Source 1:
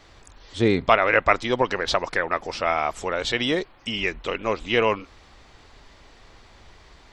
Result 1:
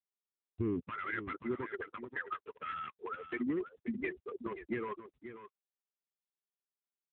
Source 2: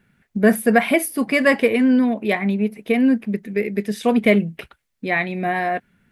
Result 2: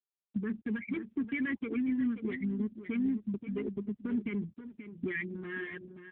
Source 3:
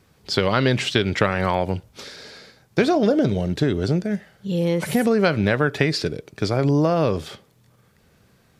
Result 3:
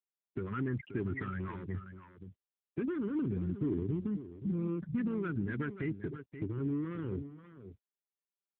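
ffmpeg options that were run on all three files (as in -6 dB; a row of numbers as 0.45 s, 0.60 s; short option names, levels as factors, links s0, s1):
-filter_complex "[0:a]lowpass=f=2400:w=0.5412,lowpass=f=2400:w=1.3066,afftfilt=real='re*gte(hypot(re,im),0.2)':imag='im*gte(hypot(re,im),0.2)':win_size=1024:overlap=0.75,lowshelf=f=270:g=2,aecho=1:1:3:0.36,acompressor=threshold=0.0224:ratio=2,alimiter=limit=0.075:level=0:latency=1:release=27,asoftclip=type=hard:threshold=0.0422,asuperstop=centerf=670:order=4:qfactor=0.88,asplit=2[s0][s1];[s1]aecho=0:1:531:0.282[s2];[s0][s2]amix=inputs=2:normalize=0" -ar 8000 -c:a libopencore_amrnb -b:a 7950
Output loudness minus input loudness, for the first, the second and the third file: -16.5 LU, -16.0 LU, -15.5 LU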